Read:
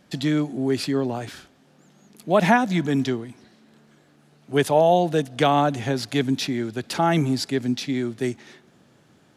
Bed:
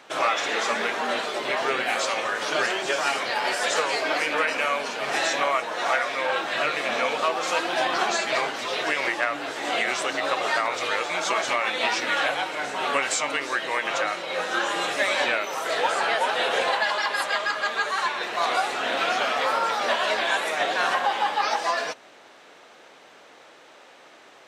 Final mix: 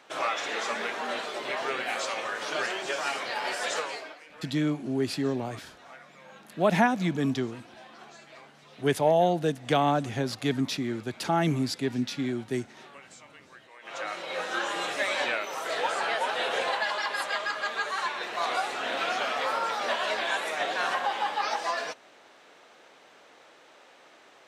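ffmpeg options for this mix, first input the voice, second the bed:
ffmpeg -i stem1.wav -i stem2.wav -filter_complex "[0:a]adelay=4300,volume=-5dB[link_01];[1:a]volume=14.5dB,afade=type=out:start_time=3.72:duration=0.44:silence=0.105925,afade=type=in:start_time=13.79:duration=0.42:silence=0.0944061[link_02];[link_01][link_02]amix=inputs=2:normalize=0" out.wav

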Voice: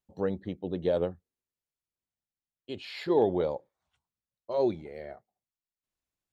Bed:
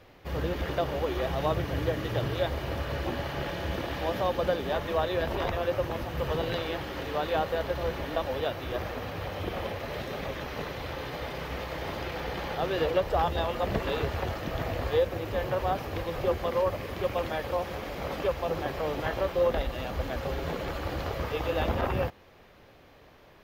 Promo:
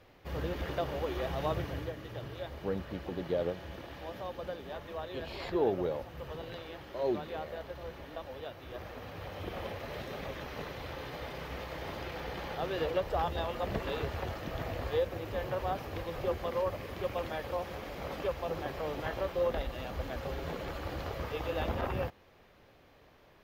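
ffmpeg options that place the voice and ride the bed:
ffmpeg -i stem1.wav -i stem2.wav -filter_complex "[0:a]adelay=2450,volume=-5dB[link_01];[1:a]volume=2dB,afade=type=out:start_time=1.61:duration=0.34:silence=0.421697,afade=type=in:start_time=8.57:duration=1.13:silence=0.446684[link_02];[link_01][link_02]amix=inputs=2:normalize=0" out.wav

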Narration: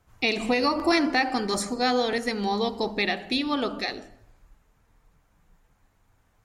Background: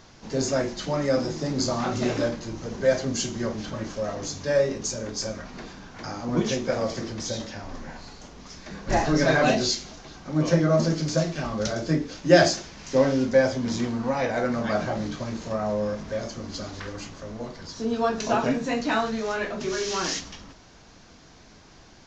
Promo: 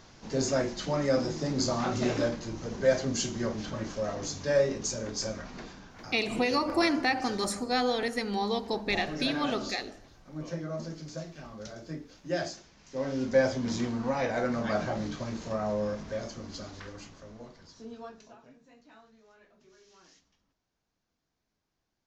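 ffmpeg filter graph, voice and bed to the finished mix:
ffmpeg -i stem1.wav -i stem2.wav -filter_complex "[0:a]adelay=5900,volume=-4dB[link_01];[1:a]volume=8.5dB,afade=type=out:start_time=5.51:duration=0.78:silence=0.237137,afade=type=in:start_time=12.95:duration=0.46:silence=0.266073,afade=type=out:start_time=15.87:duration=2.49:silence=0.0398107[link_02];[link_01][link_02]amix=inputs=2:normalize=0" out.wav

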